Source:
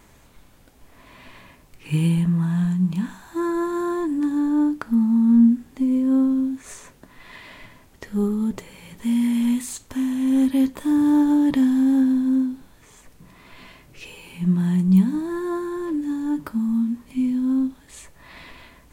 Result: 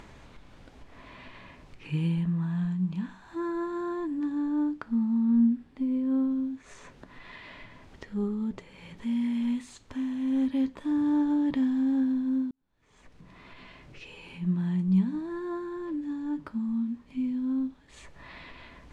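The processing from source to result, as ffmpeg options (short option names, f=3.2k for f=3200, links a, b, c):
-filter_complex "[0:a]asettb=1/sr,asplit=3[a][b][c];[a]atrim=end=5.234[d];[b]atrim=start=5.23:end=6.31,asetpts=PTS-STARTPTS,afade=t=in:d=0.004:c=qsin,afade=t=out:st=1.076:d=0.004:c=qsin,equalizer=f=6.6k:t=o:w=0.32:g=-7.5[e];[c]atrim=start=6.306[f];[d][e]acrossfade=d=0.004:c1=hsin:c2=qsin[g];[g][f]acrossfade=d=0.004:c1=qsin:c2=hsin,asplit=2[h][i];[h]atrim=end=12.51,asetpts=PTS-STARTPTS,afade=t=out:st=12.506:d=0.004:c=hsin[j];[i]atrim=start=12.51,asetpts=PTS-STARTPTS,afade=t=in:d=1.95[k];[j][k]concat=n=2:v=0:a=1,lowpass=4.4k,acompressor=mode=upward:threshold=-31dB:ratio=2.5,volume=-8dB"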